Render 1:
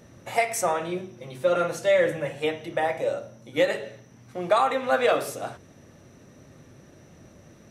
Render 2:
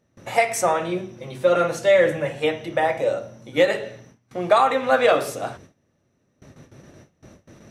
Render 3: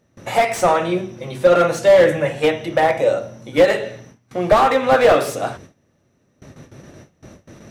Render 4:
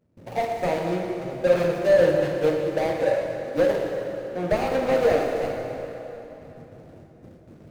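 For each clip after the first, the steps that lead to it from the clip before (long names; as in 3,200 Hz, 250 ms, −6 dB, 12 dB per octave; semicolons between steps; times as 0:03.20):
noise gate with hold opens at −40 dBFS; high-shelf EQ 10,000 Hz −6 dB; level +4.5 dB
slew-rate limiting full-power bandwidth 150 Hz; level +5.5 dB
running median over 41 samples; dense smooth reverb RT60 3.6 s, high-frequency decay 0.8×, DRR 1.5 dB; level −6 dB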